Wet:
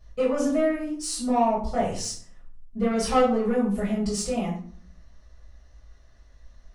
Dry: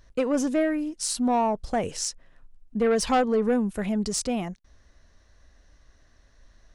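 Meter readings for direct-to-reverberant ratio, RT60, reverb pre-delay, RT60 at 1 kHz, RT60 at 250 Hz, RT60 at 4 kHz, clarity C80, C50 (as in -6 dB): -9.5 dB, 0.55 s, 4 ms, 0.55 s, 0.75 s, 0.35 s, 9.5 dB, 5.0 dB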